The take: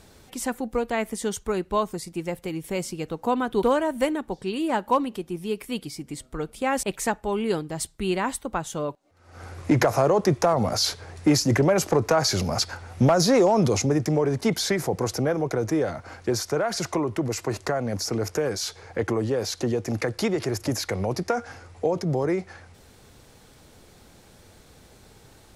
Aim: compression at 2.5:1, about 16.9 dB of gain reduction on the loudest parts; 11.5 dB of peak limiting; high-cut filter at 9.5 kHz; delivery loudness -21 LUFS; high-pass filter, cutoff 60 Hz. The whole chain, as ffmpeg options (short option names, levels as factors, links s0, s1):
-af "highpass=60,lowpass=9500,acompressor=threshold=0.00794:ratio=2.5,volume=15,alimiter=limit=0.266:level=0:latency=1"